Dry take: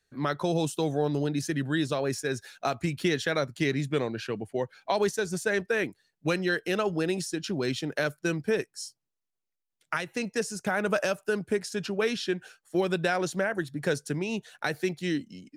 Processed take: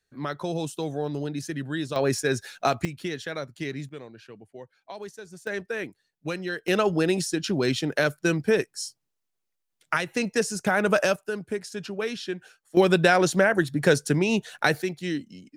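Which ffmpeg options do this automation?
-af "asetnsamples=n=441:p=0,asendcmd='1.96 volume volume 5.5dB;2.85 volume volume -5.5dB;3.89 volume volume -13dB;5.47 volume volume -4dB;6.68 volume volume 5dB;11.16 volume volume -2.5dB;12.77 volume volume 8dB;14.82 volume volume 0dB',volume=-2.5dB"

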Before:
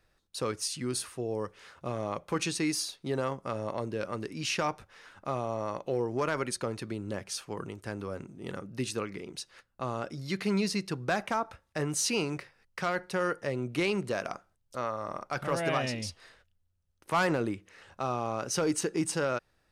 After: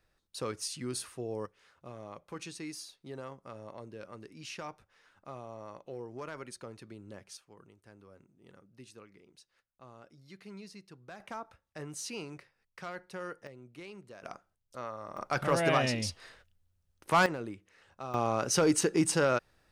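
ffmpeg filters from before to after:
-af "asetnsamples=n=441:p=0,asendcmd='1.46 volume volume -12dB;7.37 volume volume -19dB;11.2 volume volume -11dB;13.47 volume volume -18.5dB;14.23 volume volume -7dB;15.17 volume volume 2.5dB;17.26 volume volume -8.5dB;18.14 volume volume 3dB',volume=-4dB"

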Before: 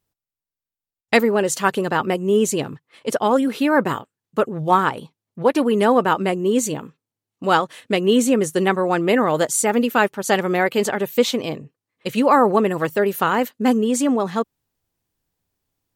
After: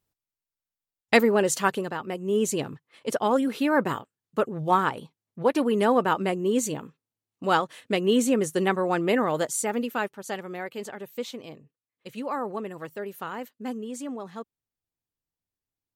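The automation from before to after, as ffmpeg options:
-af "volume=5.5dB,afade=t=out:st=1.55:d=0.45:silence=0.281838,afade=t=in:st=2:d=0.5:silence=0.375837,afade=t=out:st=9.05:d=1.38:silence=0.298538"

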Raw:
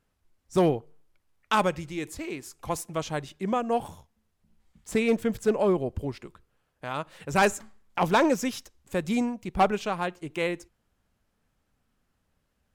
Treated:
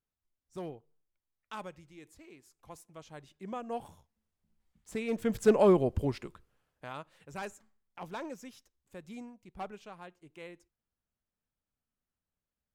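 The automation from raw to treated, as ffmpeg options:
-af "volume=1dB,afade=t=in:st=3.05:d=0.69:silence=0.398107,afade=t=in:st=5.08:d=0.42:silence=0.251189,afade=t=out:st=6.1:d=0.91:silence=0.223872,afade=t=out:st=7.01:d=0.41:silence=0.446684"

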